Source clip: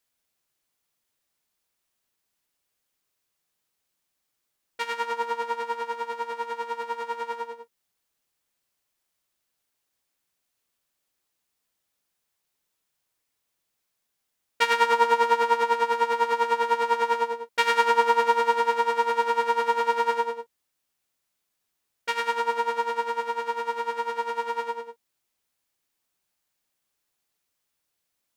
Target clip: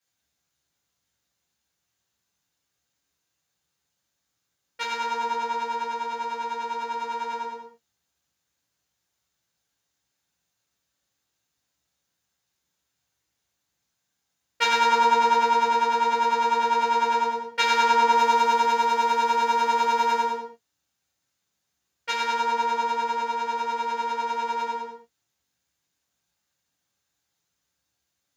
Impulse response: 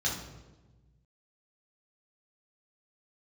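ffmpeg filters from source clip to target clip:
-filter_complex "[0:a]asettb=1/sr,asplit=3[a][b][c];[a]atrim=end=18.124[d];[b]atrim=start=18.12:end=20.37,asetpts=PTS-STARTPTS,afade=t=in:d=0.004:c=qsin,afade=t=out:st=2.246:d=0.004:c=qsin,highshelf=f=7.9k:g=7[e];[c]atrim=start=20.366[f];[d][e]acrossfade=d=0.004:c1=hsin:c2=qsin[g];[g][f]acrossfade=d=0.004:c1=qsin:c2=hsin[h];[1:a]atrim=start_sample=2205,atrim=end_sample=6615[i];[h][i]afir=irnorm=-1:irlink=0,volume=-5dB"

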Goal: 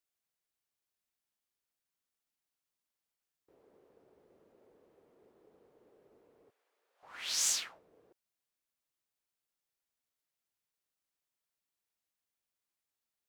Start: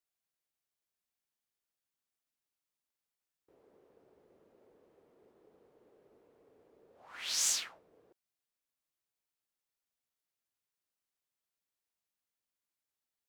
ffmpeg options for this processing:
-filter_complex "[0:a]asettb=1/sr,asplit=3[a][b][c];[a]atrim=end=6.504[d];[b]atrim=start=6.5:end=7.03,asetpts=PTS-STARTPTS,afade=t=in:d=0.004:c=qsin,afade=t=out:st=0.526:d=0.004:c=qsin,highpass=1.4k[e];[c]atrim=start=7.026[f];[d][e]acrossfade=d=0.004:c1=hsin:c2=qsin[g];[g][f]acrossfade=d=0.004:c1=qsin:c2=hsin"

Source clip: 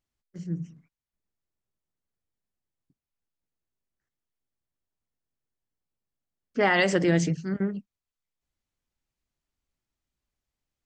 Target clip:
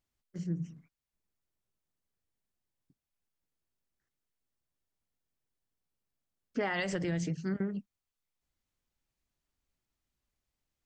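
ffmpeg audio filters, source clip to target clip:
-filter_complex "[0:a]acompressor=threshold=-29dB:ratio=12,asplit=3[a][b][c];[a]afade=t=out:st=6.72:d=0.02[d];[b]asubboost=boost=4:cutoff=130,afade=t=in:st=6.72:d=0.02,afade=t=out:st=7.23:d=0.02[e];[c]afade=t=in:st=7.23:d=0.02[f];[d][e][f]amix=inputs=3:normalize=0"

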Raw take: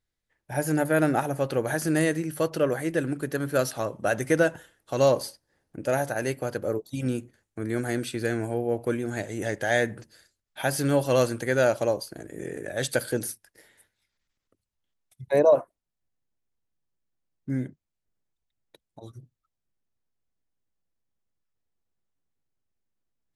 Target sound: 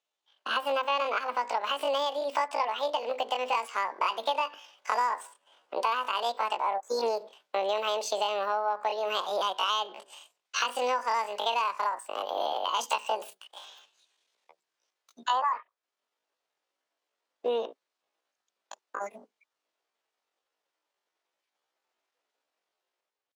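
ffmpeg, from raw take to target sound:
-filter_complex "[0:a]dynaudnorm=f=110:g=9:m=8dB,highpass=170,acrossover=split=240 4000:gain=0.0891 1 0.0631[a][b][c];[a][b][c]amix=inputs=3:normalize=0,acompressor=threshold=-30dB:ratio=8,asetrate=78577,aresample=44100,atempo=0.561231,volume=4.5dB"

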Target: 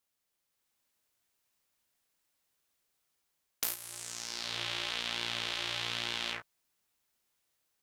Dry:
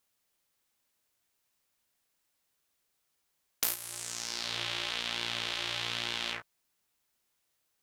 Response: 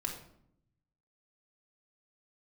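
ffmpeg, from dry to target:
-af "dynaudnorm=f=390:g=3:m=4.5dB,volume=-5.5dB"

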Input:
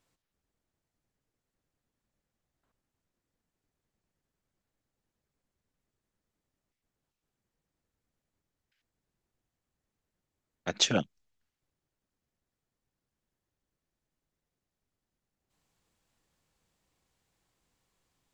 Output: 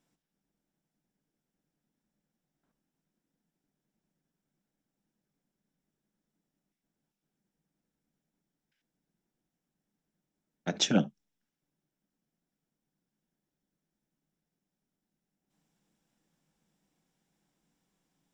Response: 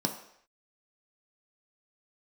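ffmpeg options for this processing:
-filter_complex "[0:a]asplit=2[a][b];[1:a]atrim=start_sample=2205,atrim=end_sample=3528,lowshelf=f=210:g=11[c];[b][c]afir=irnorm=-1:irlink=0,volume=-13.5dB[d];[a][d]amix=inputs=2:normalize=0,volume=-4dB"

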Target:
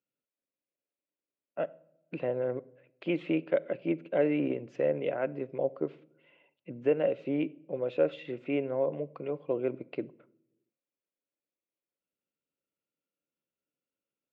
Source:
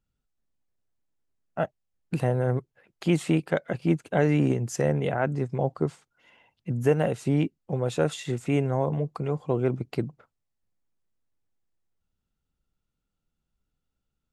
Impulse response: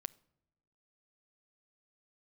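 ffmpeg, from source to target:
-filter_complex "[0:a]highpass=290,equalizer=f=310:t=q:w=4:g=5,equalizer=f=550:t=q:w=4:g=9,equalizer=f=810:t=q:w=4:g=-8,equalizer=f=1.2k:t=q:w=4:g=-4,equalizer=f=1.7k:t=q:w=4:g=-4,equalizer=f=2.5k:t=q:w=4:g=5,lowpass=f=3.1k:w=0.5412,lowpass=f=3.1k:w=1.3066[a];[1:a]atrim=start_sample=2205[b];[a][b]afir=irnorm=-1:irlink=0,volume=-3dB"

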